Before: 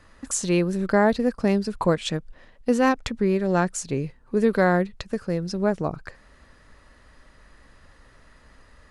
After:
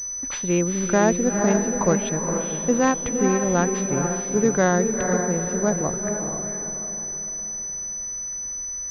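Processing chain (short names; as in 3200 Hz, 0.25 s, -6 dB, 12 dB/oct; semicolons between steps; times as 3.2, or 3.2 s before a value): diffused feedback echo 0.458 s, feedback 44%, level -4.5 dB; pulse-width modulation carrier 6000 Hz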